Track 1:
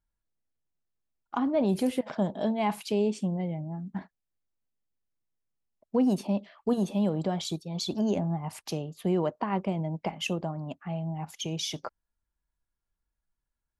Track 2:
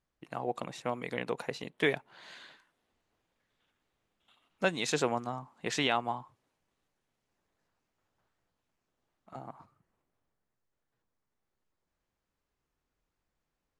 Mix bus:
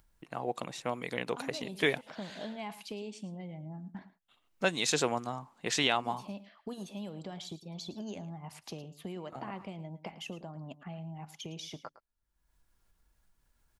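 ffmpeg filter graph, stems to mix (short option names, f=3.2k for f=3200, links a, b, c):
-filter_complex "[0:a]acrossover=split=1700|5900[a][b][c];[a]acompressor=threshold=-36dB:ratio=4[d];[b]acompressor=threshold=-41dB:ratio=4[e];[c]acompressor=threshold=-52dB:ratio=4[f];[d][e][f]amix=inputs=3:normalize=0,volume=-4.5dB,asplit=2[g][h];[h]volume=-15.5dB[i];[1:a]agate=range=-33dB:threshold=-60dB:ratio=3:detection=peak,adynamicequalizer=threshold=0.00501:dfrequency=2800:dqfactor=0.7:tfrequency=2800:tqfactor=0.7:attack=5:release=100:ratio=0.375:range=3:mode=boostabove:tftype=highshelf,volume=-0.5dB,asplit=2[j][k];[k]apad=whole_len=608285[l];[g][l]sidechaincompress=threshold=-40dB:ratio=8:attack=37:release=165[m];[i]aecho=0:1:110:1[n];[m][j][n]amix=inputs=3:normalize=0,acompressor=mode=upward:threshold=-53dB:ratio=2.5"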